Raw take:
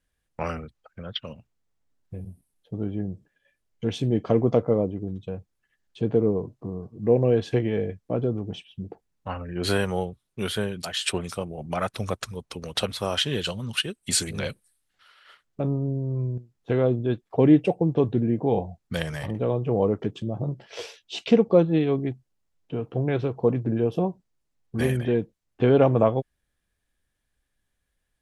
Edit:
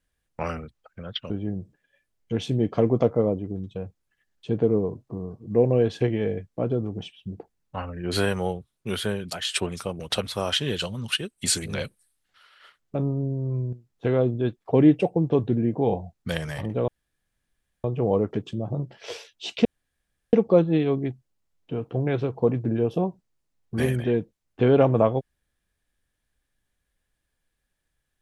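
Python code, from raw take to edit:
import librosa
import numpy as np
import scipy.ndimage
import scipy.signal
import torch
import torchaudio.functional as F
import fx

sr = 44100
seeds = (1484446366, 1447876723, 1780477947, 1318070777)

y = fx.edit(x, sr, fx.cut(start_s=1.3, length_s=1.52),
    fx.cut(start_s=11.52, length_s=1.13),
    fx.insert_room_tone(at_s=19.53, length_s=0.96),
    fx.insert_room_tone(at_s=21.34, length_s=0.68), tone=tone)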